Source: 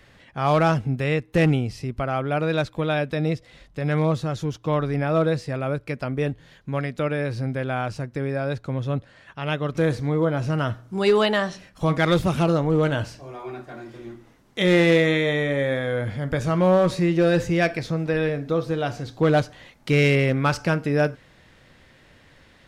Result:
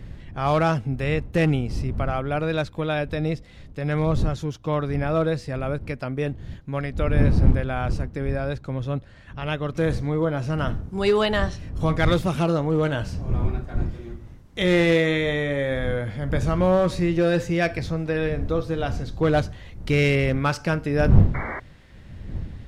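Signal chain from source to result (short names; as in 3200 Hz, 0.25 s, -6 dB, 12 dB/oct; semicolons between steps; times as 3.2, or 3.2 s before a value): wind noise 100 Hz -26 dBFS; painted sound noise, 21.34–21.6, 210–2300 Hz -30 dBFS; gain -1.5 dB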